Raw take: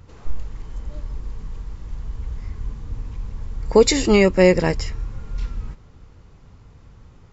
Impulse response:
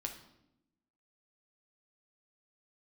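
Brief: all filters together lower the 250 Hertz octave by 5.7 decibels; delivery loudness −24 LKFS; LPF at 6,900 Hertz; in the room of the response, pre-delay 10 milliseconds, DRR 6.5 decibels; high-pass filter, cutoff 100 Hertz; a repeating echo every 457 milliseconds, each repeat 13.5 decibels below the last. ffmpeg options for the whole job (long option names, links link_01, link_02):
-filter_complex "[0:a]highpass=100,lowpass=6900,equalizer=frequency=250:width_type=o:gain=-8.5,aecho=1:1:457|914:0.211|0.0444,asplit=2[link_01][link_02];[1:a]atrim=start_sample=2205,adelay=10[link_03];[link_02][link_03]afir=irnorm=-1:irlink=0,volume=-5.5dB[link_04];[link_01][link_04]amix=inputs=2:normalize=0,volume=-4.5dB"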